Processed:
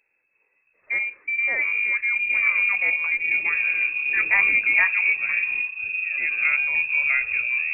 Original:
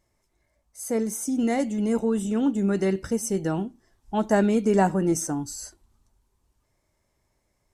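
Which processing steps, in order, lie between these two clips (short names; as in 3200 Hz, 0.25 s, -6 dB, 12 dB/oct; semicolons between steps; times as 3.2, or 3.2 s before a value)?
echoes that change speed 0.332 s, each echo -6 st, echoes 3; inverted band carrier 2600 Hz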